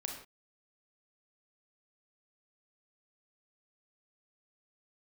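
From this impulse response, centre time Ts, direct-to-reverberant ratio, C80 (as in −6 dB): 31 ms, 1.5 dB, 8.0 dB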